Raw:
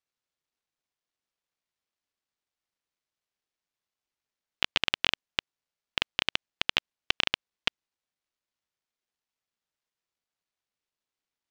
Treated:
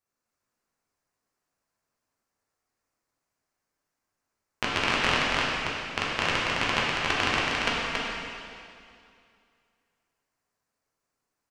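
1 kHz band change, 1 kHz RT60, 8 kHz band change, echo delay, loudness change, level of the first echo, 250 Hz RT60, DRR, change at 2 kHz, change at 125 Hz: +11.5 dB, 2.4 s, +7.5 dB, 278 ms, +3.0 dB, −3.0 dB, 2.5 s, −8.0 dB, +6.0 dB, +12.0 dB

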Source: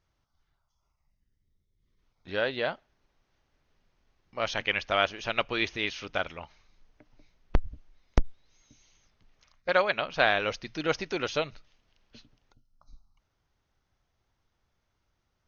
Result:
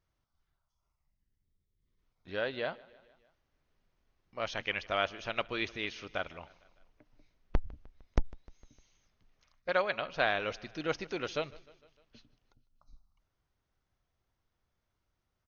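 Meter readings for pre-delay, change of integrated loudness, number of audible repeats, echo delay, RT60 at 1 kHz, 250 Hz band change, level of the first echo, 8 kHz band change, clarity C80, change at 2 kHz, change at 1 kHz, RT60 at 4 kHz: no reverb audible, −5.5 dB, 3, 152 ms, no reverb audible, −5.0 dB, −22.5 dB, can't be measured, no reverb audible, −6.0 dB, −5.5 dB, no reverb audible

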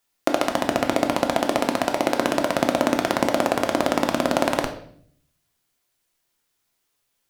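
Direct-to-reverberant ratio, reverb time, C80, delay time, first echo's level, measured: 4.0 dB, 0.60 s, 13.5 dB, no echo audible, no echo audible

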